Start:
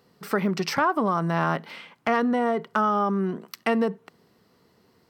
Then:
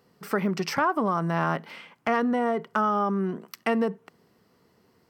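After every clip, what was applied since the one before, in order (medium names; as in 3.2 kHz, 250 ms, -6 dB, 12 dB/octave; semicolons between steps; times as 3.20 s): peaking EQ 3.9 kHz -4.5 dB 0.42 oct; trim -1.5 dB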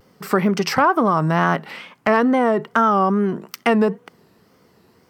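wow and flutter 110 cents; trim +8 dB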